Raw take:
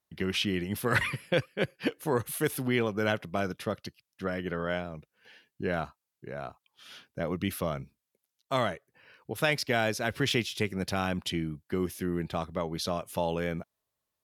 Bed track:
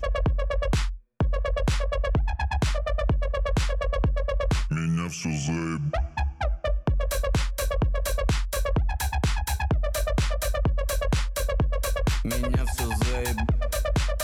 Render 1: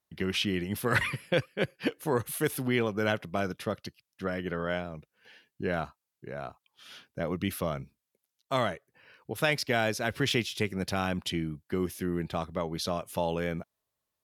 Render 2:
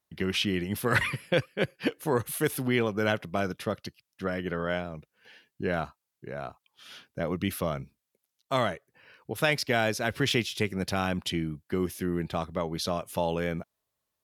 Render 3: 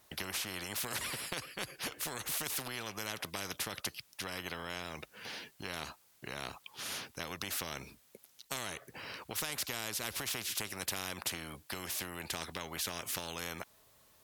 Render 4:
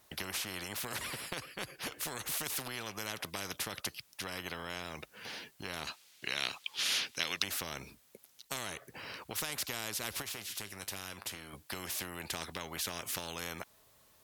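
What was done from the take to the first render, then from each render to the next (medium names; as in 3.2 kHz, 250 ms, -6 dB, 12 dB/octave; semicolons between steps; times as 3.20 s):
no audible change
trim +1.5 dB
compression, threshold -30 dBFS, peak gain reduction 11 dB; spectrum-flattening compressor 4:1
0.68–1.87 s: peaking EQ 8.4 kHz -3 dB 2.4 oct; 5.87–7.44 s: frequency weighting D; 10.22–11.53 s: feedback comb 100 Hz, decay 0.2 s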